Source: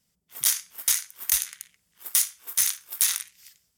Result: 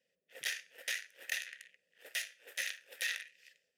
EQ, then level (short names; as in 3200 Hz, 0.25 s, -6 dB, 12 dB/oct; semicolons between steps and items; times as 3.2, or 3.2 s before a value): low shelf 71 Hz -9.5 dB; dynamic EQ 8300 Hz, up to -5 dB, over -36 dBFS, Q 1.5; vowel filter e; +10.5 dB